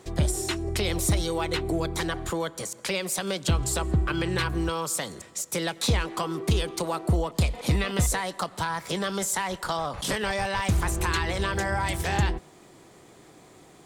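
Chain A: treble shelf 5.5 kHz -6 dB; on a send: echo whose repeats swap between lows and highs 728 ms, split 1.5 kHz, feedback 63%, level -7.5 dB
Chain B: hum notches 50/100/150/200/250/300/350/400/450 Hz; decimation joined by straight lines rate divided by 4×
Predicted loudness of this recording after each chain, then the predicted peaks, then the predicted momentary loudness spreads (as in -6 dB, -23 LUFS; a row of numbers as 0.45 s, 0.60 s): -27.5 LUFS, -28.5 LUFS; -13.5 dBFS, -13.5 dBFS; 7 LU, 5 LU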